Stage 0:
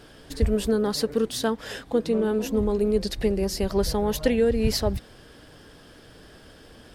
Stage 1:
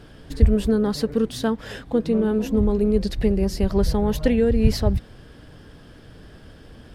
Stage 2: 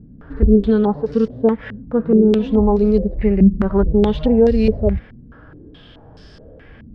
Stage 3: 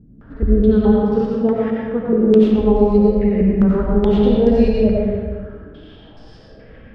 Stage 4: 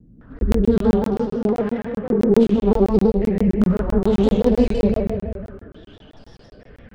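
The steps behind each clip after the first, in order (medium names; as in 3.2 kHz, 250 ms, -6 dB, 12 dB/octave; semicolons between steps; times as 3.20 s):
tone controls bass +8 dB, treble -5 dB
harmonic-percussive split percussive -15 dB; step-sequenced low-pass 4.7 Hz 220–5300 Hz; trim +5 dB
reverberation RT60 1.7 s, pre-delay 50 ms, DRR -4 dB; trim -5 dB
tracing distortion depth 0.17 ms; crackling interface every 0.13 s, samples 1024, zero, from 0.39 s; vibrato with a chosen wave square 5.9 Hz, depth 100 cents; trim -2.5 dB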